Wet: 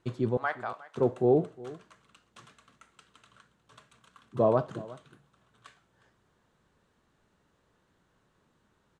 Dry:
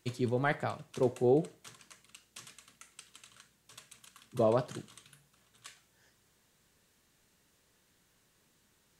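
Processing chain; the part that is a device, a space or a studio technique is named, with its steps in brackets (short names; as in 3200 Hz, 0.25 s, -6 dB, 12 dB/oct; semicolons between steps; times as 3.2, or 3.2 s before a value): 0.37–0.95 HPF 820 Hz 12 dB/oct; LPF 5200 Hz 12 dB/oct; resonant high shelf 1700 Hz -6.5 dB, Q 1.5; exciter from parts (in parallel at -7.5 dB: HPF 2000 Hz + soft clip -35.5 dBFS, distortion -17 dB + HPF 4200 Hz 24 dB/oct); on the sum: echo 0.36 s -19.5 dB; gain +3 dB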